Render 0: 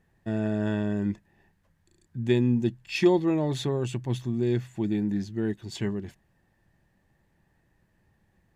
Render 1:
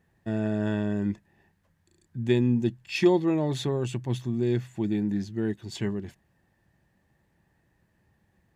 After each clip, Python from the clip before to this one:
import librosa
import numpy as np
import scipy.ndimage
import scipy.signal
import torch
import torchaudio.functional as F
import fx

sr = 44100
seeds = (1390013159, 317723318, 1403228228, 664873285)

y = scipy.signal.sosfilt(scipy.signal.butter(2, 45.0, 'highpass', fs=sr, output='sos'), x)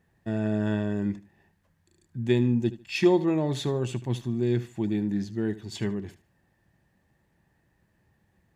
y = fx.echo_feedback(x, sr, ms=75, feedback_pct=24, wet_db=-16)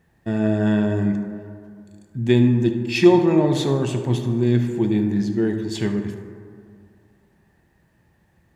y = fx.rev_plate(x, sr, seeds[0], rt60_s=2.2, hf_ratio=0.35, predelay_ms=0, drr_db=5.5)
y = y * 10.0 ** (6.0 / 20.0)